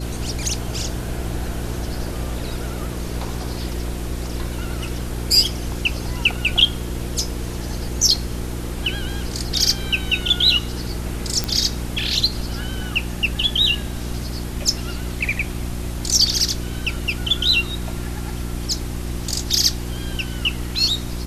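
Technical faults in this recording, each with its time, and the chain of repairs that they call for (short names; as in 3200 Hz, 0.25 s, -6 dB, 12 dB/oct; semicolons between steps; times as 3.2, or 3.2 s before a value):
hum 60 Hz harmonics 6 -28 dBFS
11.44 pop -6 dBFS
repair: de-click; de-hum 60 Hz, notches 6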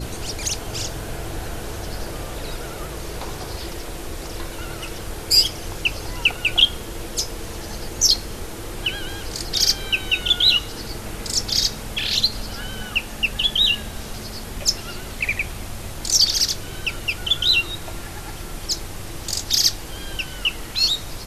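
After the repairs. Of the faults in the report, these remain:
none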